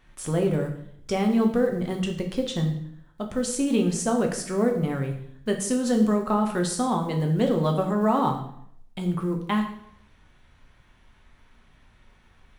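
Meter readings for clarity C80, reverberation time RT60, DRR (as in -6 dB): 11.0 dB, 0.65 s, 2.5 dB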